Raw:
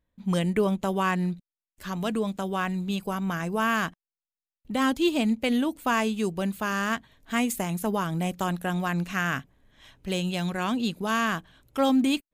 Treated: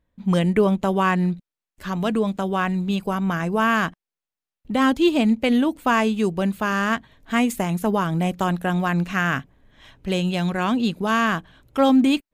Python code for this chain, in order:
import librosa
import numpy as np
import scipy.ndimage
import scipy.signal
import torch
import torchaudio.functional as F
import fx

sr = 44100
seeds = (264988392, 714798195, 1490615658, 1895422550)

y = fx.high_shelf(x, sr, hz=4500.0, db=-8.5)
y = F.gain(torch.from_numpy(y), 6.0).numpy()